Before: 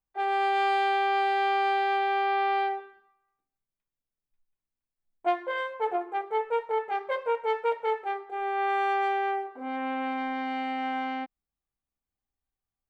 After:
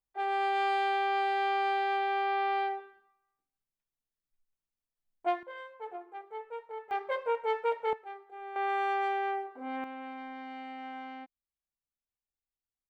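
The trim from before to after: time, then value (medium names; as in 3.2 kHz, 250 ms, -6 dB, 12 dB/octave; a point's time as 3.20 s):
-4 dB
from 5.43 s -13.5 dB
from 6.91 s -3 dB
from 7.93 s -12.5 dB
from 8.56 s -4 dB
from 9.84 s -11.5 dB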